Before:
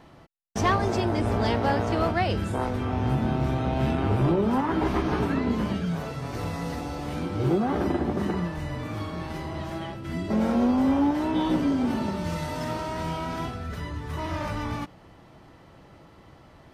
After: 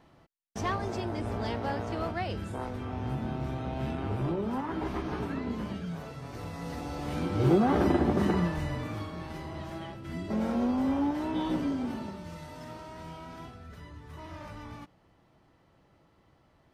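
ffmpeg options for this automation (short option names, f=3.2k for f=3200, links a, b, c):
-af "volume=1dB,afade=t=in:st=6.52:d=1.06:silence=0.334965,afade=t=out:st=8.48:d=0.62:silence=0.446684,afade=t=out:st=11.62:d=0.63:silence=0.446684"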